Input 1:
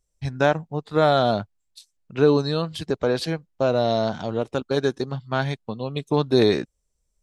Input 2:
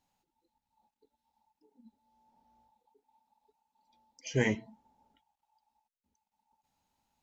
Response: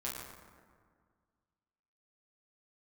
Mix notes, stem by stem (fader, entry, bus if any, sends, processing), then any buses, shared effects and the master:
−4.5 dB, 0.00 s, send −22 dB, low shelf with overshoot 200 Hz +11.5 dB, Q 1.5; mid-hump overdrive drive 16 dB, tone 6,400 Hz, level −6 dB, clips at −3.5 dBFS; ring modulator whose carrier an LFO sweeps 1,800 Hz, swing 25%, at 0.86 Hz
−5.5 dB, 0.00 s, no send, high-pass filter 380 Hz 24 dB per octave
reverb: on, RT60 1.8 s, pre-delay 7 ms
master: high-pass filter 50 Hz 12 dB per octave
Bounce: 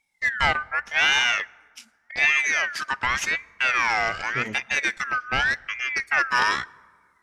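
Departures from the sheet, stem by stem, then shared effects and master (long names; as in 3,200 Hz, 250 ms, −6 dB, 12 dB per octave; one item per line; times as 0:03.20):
stem 2: missing high-pass filter 380 Hz 24 dB per octave
master: missing high-pass filter 50 Hz 12 dB per octave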